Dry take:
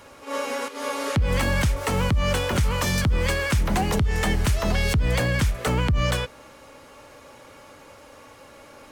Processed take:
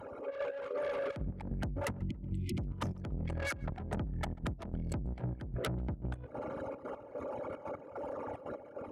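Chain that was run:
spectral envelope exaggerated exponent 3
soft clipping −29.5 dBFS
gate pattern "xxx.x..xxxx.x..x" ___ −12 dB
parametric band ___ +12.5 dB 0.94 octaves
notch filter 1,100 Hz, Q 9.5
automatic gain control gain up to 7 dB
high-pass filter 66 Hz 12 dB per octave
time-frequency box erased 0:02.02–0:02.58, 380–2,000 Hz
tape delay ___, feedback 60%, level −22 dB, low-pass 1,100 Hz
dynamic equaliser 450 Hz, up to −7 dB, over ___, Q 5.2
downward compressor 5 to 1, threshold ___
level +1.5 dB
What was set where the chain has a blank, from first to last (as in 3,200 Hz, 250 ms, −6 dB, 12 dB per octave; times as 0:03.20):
149 BPM, 11,000 Hz, 140 ms, −47 dBFS, −36 dBFS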